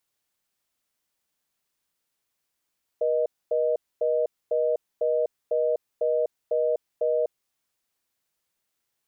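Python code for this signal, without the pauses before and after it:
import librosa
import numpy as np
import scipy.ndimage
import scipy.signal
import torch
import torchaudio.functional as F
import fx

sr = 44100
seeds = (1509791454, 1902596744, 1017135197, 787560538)

y = fx.call_progress(sr, length_s=4.47, kind='reorder tone', level_db=-23.5)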